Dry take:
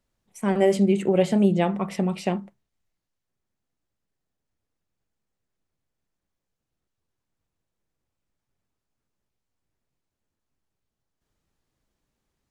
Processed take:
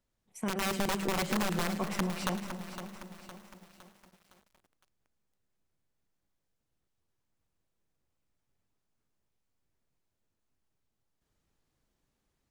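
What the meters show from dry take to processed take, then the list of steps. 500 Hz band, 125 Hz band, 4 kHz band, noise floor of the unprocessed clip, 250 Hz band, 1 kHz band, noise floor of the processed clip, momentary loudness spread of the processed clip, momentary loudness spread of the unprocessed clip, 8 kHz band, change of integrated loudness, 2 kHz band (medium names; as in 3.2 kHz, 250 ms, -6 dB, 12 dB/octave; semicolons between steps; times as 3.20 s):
-14.5 dB, -10.5 dB, +1.5 dB, -84 dBFS, -11.5 dB, -4.5 dB, -82 dBFS, 18 LU, 9 LU, +2.5 dB, -10.5 dB, 0.0 dB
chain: integer overflow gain 14.5 dB; compression 6:1, threshold -28 dBFS, peak gain reduction 10 dB; on a send: two-band feedback delay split 1.6 kHz, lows 230 ms, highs 107 ms, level -12 dB; on the sum: level rider gain up to 3.5 dB; bit-crushed delay 511 ms, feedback 55%, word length 8-bit, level -10.5 dB; trim -5 dB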